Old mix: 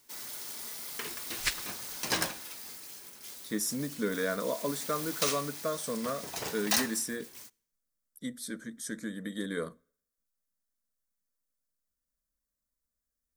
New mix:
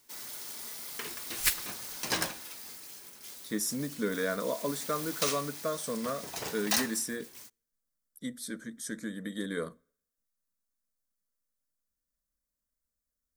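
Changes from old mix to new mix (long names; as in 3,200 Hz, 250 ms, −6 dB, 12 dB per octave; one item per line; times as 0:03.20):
first sound: send −9.0 dB
second sound: remove low-pass filter 6,400 Hz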